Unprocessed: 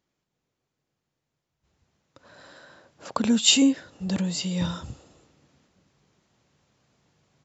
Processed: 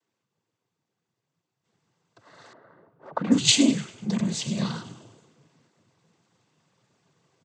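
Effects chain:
echo with shifted repeats 99 ms, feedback 48%, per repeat −100 Hz, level −13.5 dB
cochlear-implant simulation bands 16
0:02.53–0:03.74: low-pass that shuts in the quiet parts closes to 970 Hz, open at −14.5 dBFS

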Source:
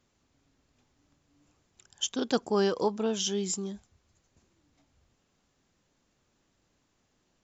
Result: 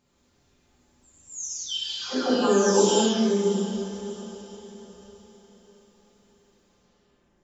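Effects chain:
every frequency bin delayed by itself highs early, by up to 798 ms
feedback delay with all-pass diffusion 615 ms, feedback 42%, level −13 dB
reverb whose tail is shaped and stops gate 280 ms flat, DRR −6 dB
level +1.5 dB

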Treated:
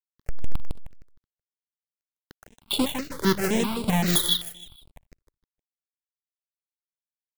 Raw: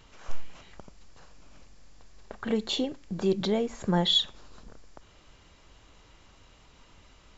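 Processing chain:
each half-wave held at its own peak
high-shelf EQ 2,800 Hz +2.5 dB
0:00.66–0:02.71: downward compressor 12 to 1, threshold −40 dBFS, peak gain reduction 21 dB
dead-zone distortion −37.5 dBFS
shaped tremolo triangle 2.2 Hz, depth 35%
repeating echo 155 ms, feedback 29%, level −4 dB
step-sequenced phaser 7.7 Hz 730–6,200 Hz
level +3.5 dB

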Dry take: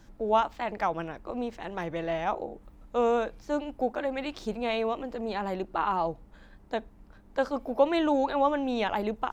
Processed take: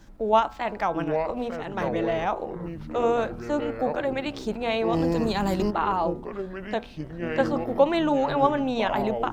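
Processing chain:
delay with pitch and tempo change per echo 655 ms, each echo −6 semitones, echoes 3, each echo −6 dB
in parallel at −2 dB: output level in coarse steps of 11 dB
0:04.93–0:05.71: on the sum: bass and treble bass +8 dB, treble +14 dB
hum removal 121 Hz, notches 13

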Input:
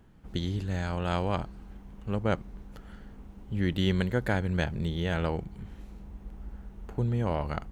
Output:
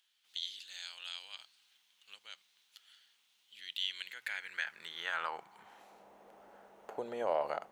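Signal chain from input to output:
mains-hum notches 60/120/180 Hz
brickwall limiter −22.5 dBFS, peak gain reduction 8.5 dB
high-pass filter sweep 3,500 Hz → 600 Hz, 0:03.69–0:06.12
level −1.5 dB

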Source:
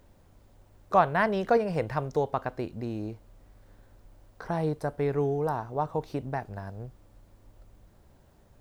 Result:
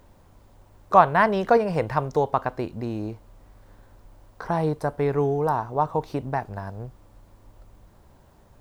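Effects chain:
parametric band 1,000 Hz +5 dB 0.67 octaves
level +4 dB

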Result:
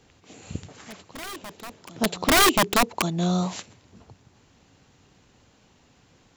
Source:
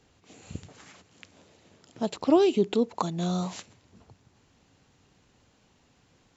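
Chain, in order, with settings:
wrap-around overflow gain 17.5 dB
backwards echo 1,132 ms −20 dB
level +5 dB

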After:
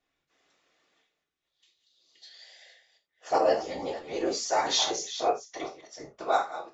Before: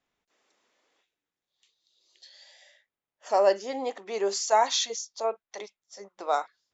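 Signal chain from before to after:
delay that plays each chunk backwards 248 ms, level −12.5 dB
low-pass filter 6,800 Hz 12 dB per octave
parametric band 870 Hz −7 dB 0.31 octaves
random phases in short frames
convolution reverb, pre-delay 3 ms, DRR 1.5 dB
0:03.38–0:04.69: string-ensemble chorus

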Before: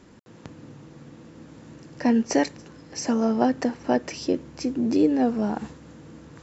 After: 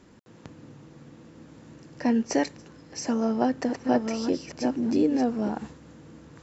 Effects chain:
0:03.08–0:05.49: delay that plays each chunk backwards 609 ms, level −5 dB
level −3 dB

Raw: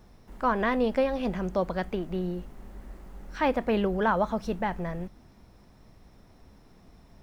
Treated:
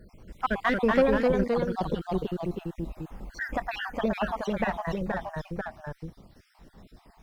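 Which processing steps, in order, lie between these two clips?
time-frequency cells dropped at random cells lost 66%
in parallel at −3.5 dB: asymmetric clip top −31 dBFS
on the sum: delay with pitch and tempo change per echo 200 ms, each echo −1 semitone, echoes 2

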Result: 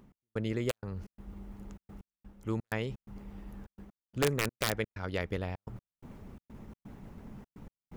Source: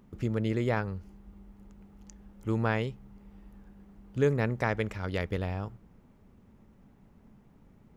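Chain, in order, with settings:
harmonic and percussive parts rebalanced percussive +4 dB
reversed playback
upward compression, threshold −30 dBFS
reversed playback
wrap-around overflow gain 15 dB
gate pattern "x..xxx.xx.xxxxx." 127 BPM −60 dB
level −4.5 dB

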